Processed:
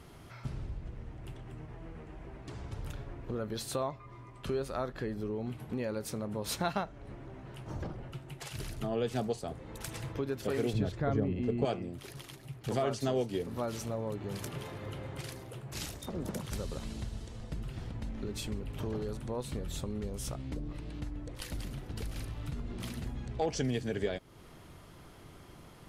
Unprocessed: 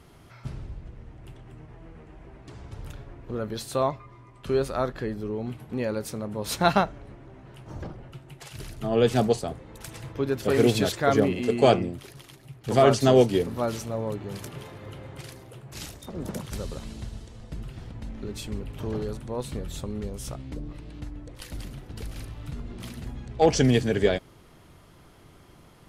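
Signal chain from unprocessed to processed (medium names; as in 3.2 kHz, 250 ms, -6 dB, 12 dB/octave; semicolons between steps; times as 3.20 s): 10.73–11.65 s: RIAA curve playback; compression 2.5:1, threshold -35 dBFS, peak gain reduction 16.5 dB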